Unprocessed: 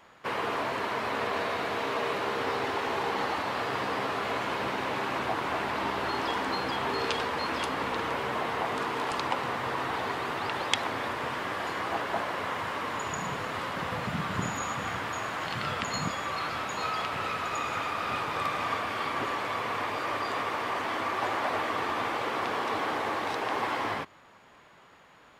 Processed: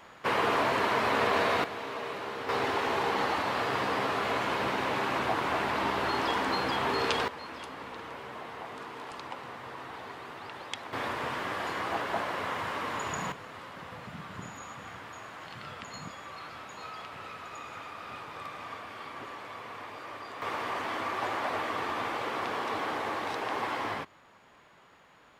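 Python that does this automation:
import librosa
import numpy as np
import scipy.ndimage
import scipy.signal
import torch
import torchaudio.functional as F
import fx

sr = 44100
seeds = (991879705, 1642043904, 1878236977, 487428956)

y = fx.gain(x, sr, db=fx.steps((0.0, 4.0), (1.64, -6.5), (2.49, 1.0), (7.28, -11.0), (10.93, -1.0), (13.32, -11.0), (20.42, -2.5)))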